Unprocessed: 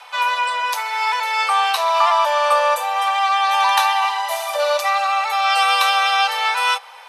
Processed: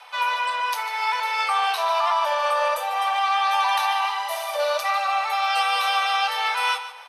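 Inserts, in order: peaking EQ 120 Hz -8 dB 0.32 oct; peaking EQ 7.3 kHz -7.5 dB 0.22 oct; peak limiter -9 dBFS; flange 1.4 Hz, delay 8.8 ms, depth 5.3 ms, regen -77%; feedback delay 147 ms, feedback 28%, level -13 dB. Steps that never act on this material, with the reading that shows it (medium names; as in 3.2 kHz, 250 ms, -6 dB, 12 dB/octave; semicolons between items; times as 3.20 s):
peaking EQ 120 Hz: input has nothing below 430 Hz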